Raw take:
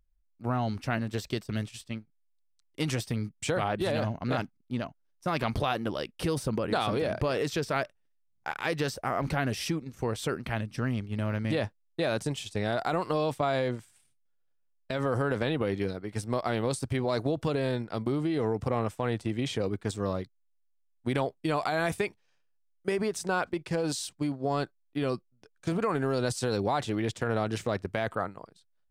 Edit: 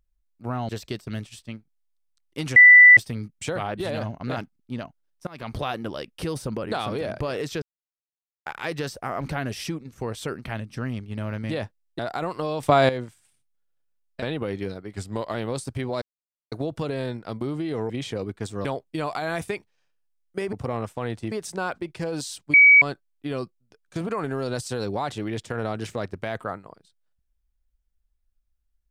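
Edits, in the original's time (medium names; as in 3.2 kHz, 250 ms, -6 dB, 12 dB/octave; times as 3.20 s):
0.69–1.11 s: delete
2.98 s: add tone 1.98 kHz -6.5 dBFS 0.41 s
5.28–5.64 s: fade in linear, from -22.5 dB
7.63–8.47 s: mute
12.00–12.70 s: delete
13.34–13.60 s: gain +10.5 dB
14.93–15.41 s: delete
16.13–16.50 s: speed 91%
17.17 s: insert silence 0.50 s
18.55–19.34 s: move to 23.03 s
20.09–21.15 s: delete
24.25–24.53 s: bleep 2.27 kHz -9 dBFS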